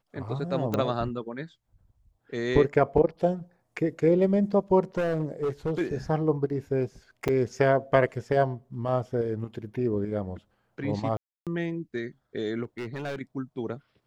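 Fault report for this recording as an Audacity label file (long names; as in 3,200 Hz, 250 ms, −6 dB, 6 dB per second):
0.740000	0.740000	click −14 dBFS
4.970000	5.810000	clipping −23.5 dBFS
7.280000	7.290000	drop-out 6.6 ms
11.170000	11.470000	drop-out 297 ms
12.630000	13.160000	clipping −29.5 dBFS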